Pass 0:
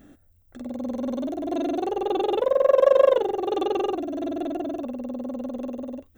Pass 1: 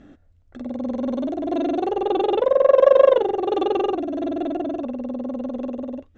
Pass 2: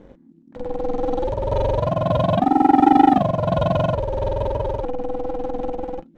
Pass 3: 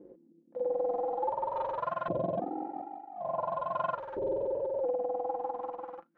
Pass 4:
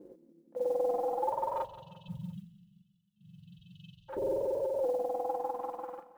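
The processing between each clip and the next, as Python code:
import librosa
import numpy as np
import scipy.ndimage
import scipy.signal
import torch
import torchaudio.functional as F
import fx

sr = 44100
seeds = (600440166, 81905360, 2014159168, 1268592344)

y1 = scipy.signal.sosfilt(scipy.signal.bessel(8, 4200.0, 'lowpass', norm='mag', fs=sr, output='sos'), x)
y1 = y1 * librosa.db_to_amplitude(3.5)
y2 = fx.low_shelf(y1, sr, hz=160.0, db=11.0)
y2 = fx.leveller(y2, sr, passes=1)
y2 = y2 * np.sin(2.0 * np.pi * 250.0 * np.arange(len(y2)) / sr)
y3 = fx.filter_lfo_bandpass(y2, sr, shape='saw_up', hz=0.48, low_hz=360.0, high_hz=1500.0, q=3.6)
y3 = fx.over_compress(y3, sr, threshold_db=-31.0, ratio=-1.0)
y3 = y3 + 0.39 * np.pad(y3, (int(5.8 * sr / 1000.0), 0))[:len(y3)]
y3 = y3 * librosa.db_to_amplitude(-3.0)
y4 = fx.spec_erase(y3, sr, start_s=1.64, length_s=2.45, low_hz=200.0, high_hz=2600.0)
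y4 = fx.mod_noise(y4, sr, seeds[0], snr_db=32)
y4 = fx.echo_feedback(y4, sr, ms=174, feedback_pct=50, wet_db=-16)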